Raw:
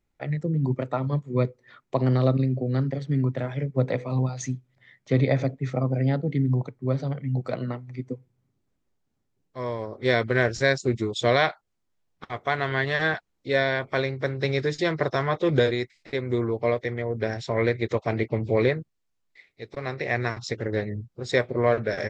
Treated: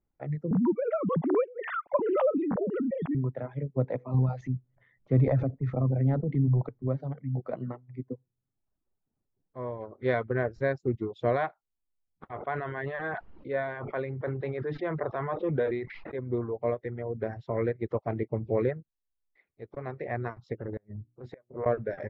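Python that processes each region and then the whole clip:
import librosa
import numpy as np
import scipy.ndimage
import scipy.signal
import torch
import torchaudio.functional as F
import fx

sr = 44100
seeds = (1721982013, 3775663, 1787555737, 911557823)

y = fx.chain(x, sr, fx.sine_speech(),
    fx.peak_eq(hz=2700.0, db=5.0, octaves=0.37),
    fx.pre_swell(db_per_s=30.0), at=(0.51, 3.15))
y = fx.chain(y, sr, fx.transient(attack_db=-2, sustain_db=7),
    fx.low_shelf(hz=140.0, db=9.0), at=(4.14, 6.88))
y = fx.chain(y, sr, fx.lowpass(hz=4400.0, slope=24),
    fx.high_shelf(hz=2200.0, db=10.5), at=(9.8, 10.29))
y = fx.chain(y, sr, fx.lowpass(hz=4000.0, slope=24),
    fx.low_shelf(hz=370.0, db=-6.5),
    fx.sustainer(db_per_s=28.0), at=(12.31, 16.19))
y = fx.chain(y, sr, fx.hum_notches(base_hz=60, count=6),
    fx.gate_flip(shuts_db=-15.0, range_db=-28),
    fx.transient(attack_db=-9, sustain_db=-1), at=(20.61, 21.66))
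y = fx.dereverb_blind(y, sr, rt60_s=0.7)
y = scipy.signal.sosfilt(scipy.signal.butter(2, 1200.0, 'lowpass', fs=sr, output='sos'), y)
y = F.gain(torch.from_numpy(y), -4.0).numpy()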